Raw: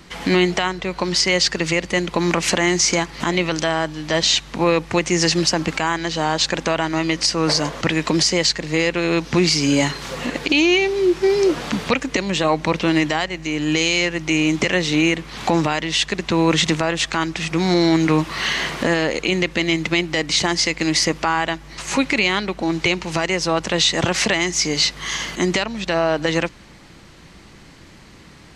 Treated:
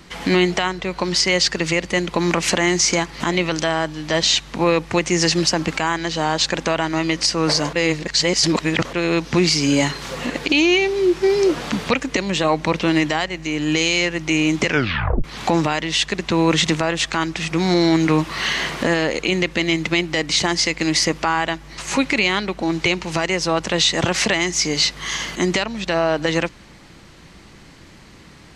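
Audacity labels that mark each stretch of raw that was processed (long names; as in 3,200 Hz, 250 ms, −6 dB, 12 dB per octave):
7.730000	8.930000	reverse
14.660000	14.660000	tape stop 0.58 s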